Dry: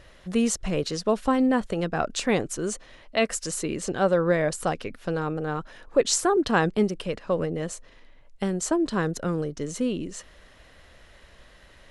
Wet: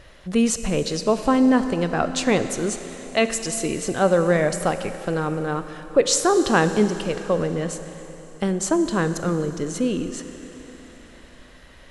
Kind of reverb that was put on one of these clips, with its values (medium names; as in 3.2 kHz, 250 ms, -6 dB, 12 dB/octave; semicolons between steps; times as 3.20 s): Schroeder reverb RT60 3.8 s, combs from 31 ms, DRR 9.5 dB; trim +3.5 dB